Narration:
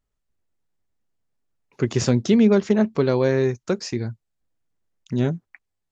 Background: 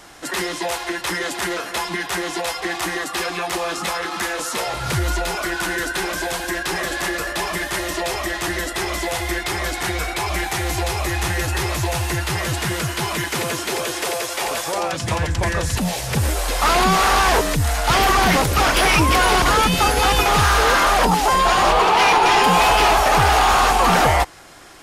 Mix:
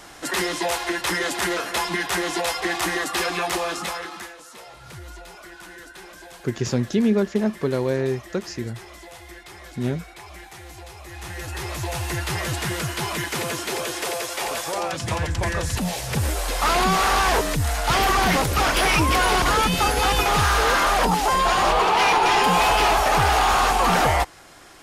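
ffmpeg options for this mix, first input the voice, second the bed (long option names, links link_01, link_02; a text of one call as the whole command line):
ffmpeg -i stem1.wav -i stem2.wav -filter_complex "[0:a]adelay=4650,volume=-3.5dB[link_01];[1:a]volume=15dB,afade=type=out:start_time=3.45:duration=0.9:silence=0.11885,afade=type=in:start_time=11.04:duration=1.24:silence=0.177828[link_02];[link_01][link_02]amix=inputs=2:normalize=0" out.wav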